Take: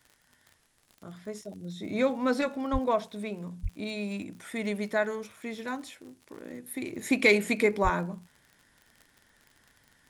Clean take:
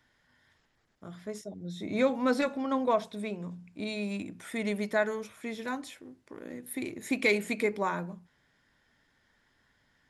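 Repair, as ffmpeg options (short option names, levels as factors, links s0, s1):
-filter_complex "[0:a]adeclick=t=4,asplit=3[s0][s1][s2];[s0]afade=t=out:st=2.72:d=0.02[s3];[s1]highpass=f=140:w=0.5412,highpass=f=140:w=1.3066,afade=t=in:st=2.72:d=0.02,afade=t=out:st=2.84:d=0.02[s4];[s2]afade=t=in:st=2.84:d=0.02[s5];[s3][s4][s5]amix=inputs=3:normalize=0,asplit=3[s6][s7][s8];[s6]afade=t=out:st=3.62:d=0.02[s9];[s7]highpass=f=140:w=0.5412,highpass=f=140:w=1.3066,afade=t=in:st=3.62:d=0.02,afade=t=out:st=3.74:d=0.02[s10];[s8]afade=t=in:st=3.74:d=0.02[s11];[s9][s10][s11]amix=inputs=3:normalize=0,asplit=3[s12][s13][s14];[s12]afade=t=out:st=7.83:d=0.02[s15];[s13]highpass=f=140:w=0.5412,highpass=f=140:w=1.3066,afade=t=in:st=7.83:d=0.02,afade=t=out:st=7.95:d=0.02[s16];[s14]afade=t=in:st=7.95:d=0.02[s17];[s15][s16][s17]amix=inputs=3:normalize=0,agate=range=0.0891:threshold=0.00141,asetnsamples=n=441:p=0,asendcmd='6.93 volume volume -4.5dB',volume=1"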